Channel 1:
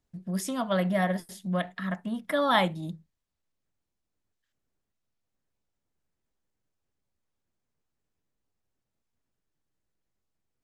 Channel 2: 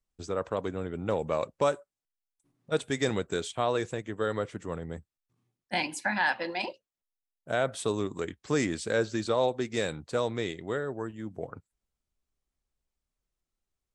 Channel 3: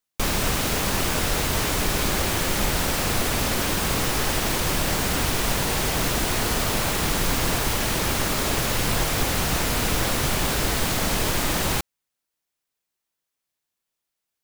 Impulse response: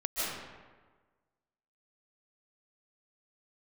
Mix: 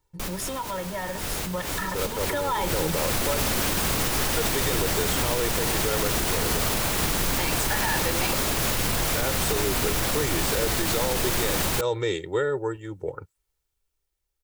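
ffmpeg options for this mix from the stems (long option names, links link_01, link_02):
-filter_complex "[0:a]equalizer=frequency=960:width_type=o:width=0.21:gain=13,acompressor=threshold=-30dB:ratio=6,volume=2.5dB,asplit=2[link_01][link_02];[1:a]adelay=1650,volume=-5dB[link_03];[2:a]volume=-8.5dB[link_04];[link_02]apad=whole_len=636748[link_05];[link_04][link_05]sidechaincompress=threshold=-37dB:ratio=8:attack=26:release=109[link_06];[link_01][link_03]amix=inputs=2:normalize=0,aecho=1:1:2.2:0.95,alimiter=limit=-24dB:level=0:latency=1:release=59,volume=0dB[link_07];[link_06][link_07]amix=inputs=2:normalize=0,highshelf=frequency=7900:gain=4,dynaudnorm=framelen=310:gausssize=17:maxgain=9.5dB,alimiter=limit=-14.5dB:level=0:latency=1:release=72"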